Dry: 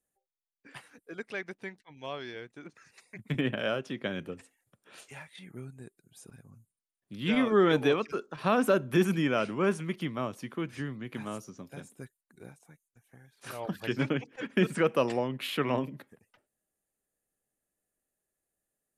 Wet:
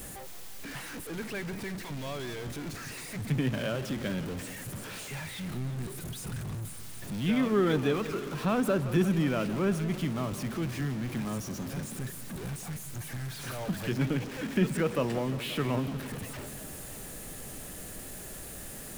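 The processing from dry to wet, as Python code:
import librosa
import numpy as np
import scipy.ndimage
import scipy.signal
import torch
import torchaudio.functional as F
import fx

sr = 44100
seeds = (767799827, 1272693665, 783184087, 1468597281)

y = x + 0.5 * 10.0 ** (-31.5 / 20.0) * np.sign(x)
y = fx.bass_treble(y, sr, bass_db=8, treble_db=0)
y = fx.echo_warbled(y, sr, ms=175, feedback_pct=72, rate_hz=2.8, cents=172, wet_db=-14.5)
y = y * 10.0 ** (-5.5 / 20.0)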